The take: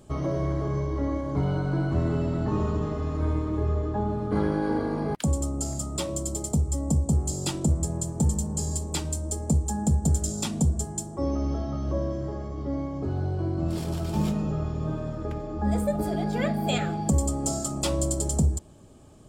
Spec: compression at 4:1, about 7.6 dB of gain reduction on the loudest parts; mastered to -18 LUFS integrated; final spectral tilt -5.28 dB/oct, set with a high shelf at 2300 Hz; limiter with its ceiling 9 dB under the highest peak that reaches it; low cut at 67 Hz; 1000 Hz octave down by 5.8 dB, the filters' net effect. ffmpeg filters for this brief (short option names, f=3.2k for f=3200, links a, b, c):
-af "highpass=67,equalizer=f=1k:t=o:g=-9,highshelf=f=2.3k:g=7,acompressor=threshold=-28dB:ratio=4,volume=15dB,alimiter=limit=-7.5dB:level=0:latency=1"